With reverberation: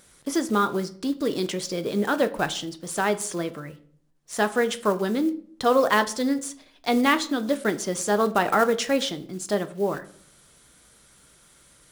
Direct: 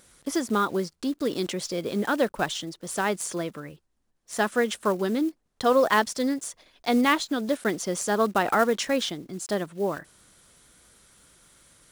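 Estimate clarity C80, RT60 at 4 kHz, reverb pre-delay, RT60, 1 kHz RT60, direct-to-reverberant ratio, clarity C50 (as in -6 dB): 20.5 dB, 0.40 s, 5 ms, 0.55 s, 0.50 s, 9.5 dB, 17.0 dB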